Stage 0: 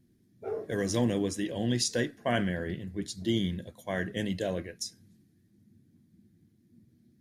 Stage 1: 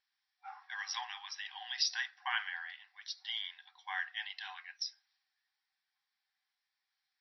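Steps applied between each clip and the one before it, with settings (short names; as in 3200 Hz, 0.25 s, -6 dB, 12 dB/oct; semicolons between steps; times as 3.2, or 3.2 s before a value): FFT band-pass 740–5800 Hz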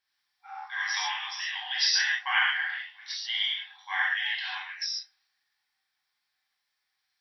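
non-linear reverb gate 0.17 s flat, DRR -6 dB; dynamic EQ 2200 Hz, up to +6 dB, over -44 dBFS, Q 0.76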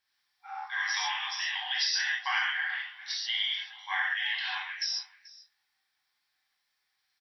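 compressor 3:1, threshold -29 dBFS, peak gain reduction 7 dB; echo 0.435 s -20.5 dB; gain +1.5 dB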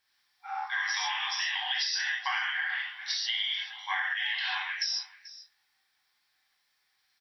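compressor, threshold -32 dBFS, peak gain reduction 7.5 dB; gain +4.5 dB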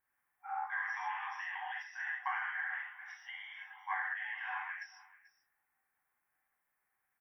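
Butterworth band-stop 4300 Hz, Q 0.52; gain -3 dB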